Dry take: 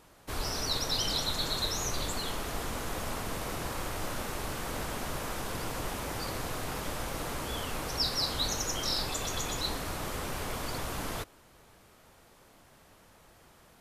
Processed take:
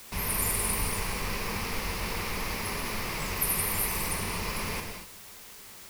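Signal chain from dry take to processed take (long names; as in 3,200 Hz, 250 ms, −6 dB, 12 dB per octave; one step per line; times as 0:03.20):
wrong playback speed 33 rpm record played at 78 rpm
EQ curve with evenly spaced ripples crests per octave 0.86, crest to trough 8 dB
reverb whose tail is shaped and stops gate 270 ms flat, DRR 2.5 dB
bit-depth reduction 8 bits, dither triangular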